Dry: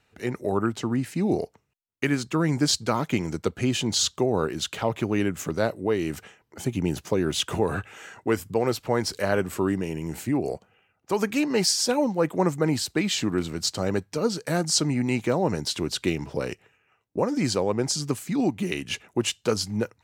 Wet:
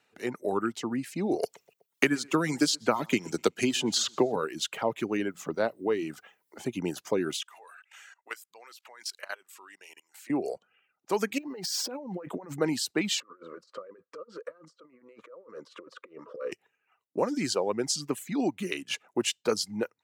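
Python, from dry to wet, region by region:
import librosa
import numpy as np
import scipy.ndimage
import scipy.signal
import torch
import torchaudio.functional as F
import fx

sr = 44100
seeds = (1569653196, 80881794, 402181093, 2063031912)

y = fx.chain(x, sr, fx.transient(attack_db=4, sustain_db=-1),
    fx.echo_feedback(ms=124, feedback_pct=30, wet_db=-17.0),
    fx.band_squash(depth_pct=70), at=(1.43, 4.36))
y = fx.chain(y, sr, fx.high_shelf(hz=4900.0, db=-10.0),
    fx.hum_notches(base_hz=60, count=3),
    fx.quant_dither(seeds[0], bits=12, dither='triangular'), at=(5.17, 6.66))
y = fx.chain(y, sr, fx.highpass(hz=1300.0, slope=12),
    fx.level_steps(step_db=16), at=(7.36, 10.3))
y = fx.chain(y, sr, fx.high_shelf(hz=2100.0, db=-7.0),
    fx.over_compress(threshold_db=-32.0, ratio=-1.0),
    fx.resample_linear(factor=2), at=(11.38, 12.61))
y = fx.chain(y, sr, fx.over_compress(threshold_db=-31.0, ratio=-0.5),
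    fx.leveller(passes=1),
    fx.double_bandpass(hz=780.0, octaves=1.2), at=(13.2, 16.52))
y = fx.dereverb_blind(y, sr, rt60_s=0.7)
y = scipy.signal.sosfilt(scipy.signal.butter(2, 230.0, 'highpass', fs=sr, output='sos'), y)
y = y * librosa.db_to_amplitude(-2.0)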